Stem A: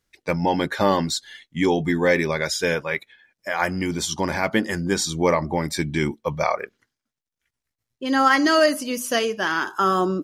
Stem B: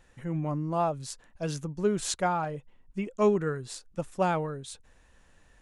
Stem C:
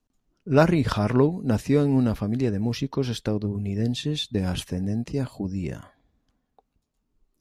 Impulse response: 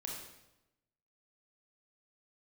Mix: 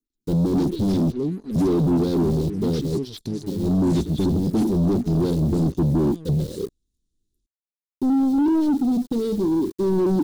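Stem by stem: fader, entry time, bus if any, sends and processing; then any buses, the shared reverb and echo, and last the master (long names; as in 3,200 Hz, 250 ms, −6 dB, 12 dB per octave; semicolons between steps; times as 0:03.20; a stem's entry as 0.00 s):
−8.0 dB, 0.00 s, no send, Chebyshev low-pass filter 500 Hz, order 4; leveller curve on the samples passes 5; bit reduction 7 bits
−11.5 dB, 1.85 s, no send, no processing
+2.5 dB, 0.00 s, no send, soft clipping −23.5 dBFS, distortion −7 dB; low-shelf EQ 150 Hz −10.5 dB; phaser with staggered stages 3 Hz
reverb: not used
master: elliptic band-stop filter 360–3,800 Hz; leveller curve on the samples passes 2; slew-rate limiting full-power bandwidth 81 Hz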